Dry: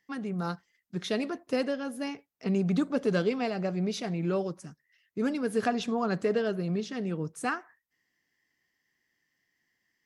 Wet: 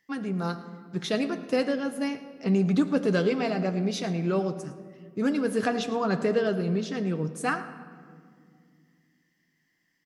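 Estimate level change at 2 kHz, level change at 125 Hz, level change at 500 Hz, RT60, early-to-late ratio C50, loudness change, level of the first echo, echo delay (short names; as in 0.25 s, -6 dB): +3.5 dB, +3.5 dB, +3.0 dB, 2.1 s, 11.5 dB, +3.5 dB, -17.0 dB, 0.109 s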